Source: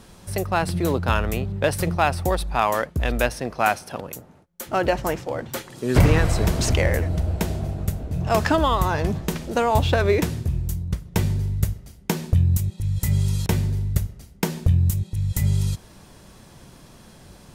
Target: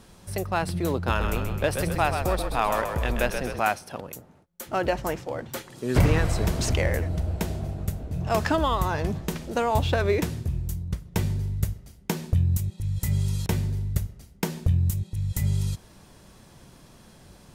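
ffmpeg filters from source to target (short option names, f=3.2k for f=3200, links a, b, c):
-filter_complex "[0:a]asettb=1/sr,asplit=3[a][b][c];[a]atrim=end=0.944[d];[b]atrim=start=0.94:end=3.6,asetpts=PTS-STARTPTS,afade=t=in:d=0.004:c=qsin,afade=t=out:st=2.656:d=0.004:c=qsin,asplit=9[e][f][g][h][i][j][k][l][m];[f]adelay=130,afreqshift=-38,volume=-6.5dB[n];[g]adelay=260,afreqshift=-76,volume=-11.2dB[o];[h]adelay=390,afreqshift=-114,volume=-16dB[p];[i]adelay=520,afreqshift=-152,volume=-20.7dB[q];[j]adelay=650,afreqshift=-190,volume=-25.4dB[r];[k]adelay=780,afreqshift=-228,volume=-30.2dB[s];[l]adelay=910,afreqshift=-266,volume=-34.9dB[t];[m]adelay=1040,afreqshift=-304,volume=-39.6dB[u];[e][n][o][p][q][r][s][t][u]amix=inputs=9:normalize=0,atrim=end_sample=117306[v];[c]atrim=start=3.596[w];[d][v]acrossfade=d=0.004:c1=hsin:c2=qsin[x];[x][w]acrossfade=d=0.004:c1=qsin:c2=hsin,volume=-4dB"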